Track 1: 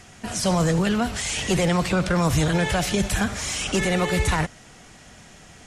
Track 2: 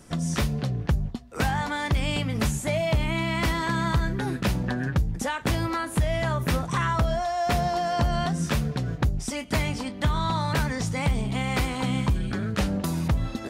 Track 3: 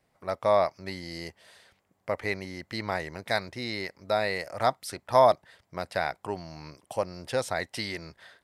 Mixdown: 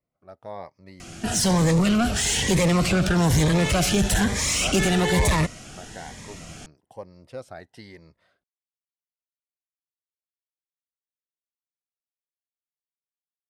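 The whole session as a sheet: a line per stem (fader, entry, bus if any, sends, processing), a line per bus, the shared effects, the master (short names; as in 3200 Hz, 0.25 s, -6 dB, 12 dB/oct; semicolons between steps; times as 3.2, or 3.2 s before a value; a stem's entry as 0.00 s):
+1.5 dB, 1.00 s, no send, soft clip -21.5 dBFS, distortion -12 dB
off
-11.5 dB, 0.00 s, no send, high shelf 2200 Hz -11.5 dB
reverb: off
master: AGC gain up to 5 dB; cascading phaser rising 1.1 Hz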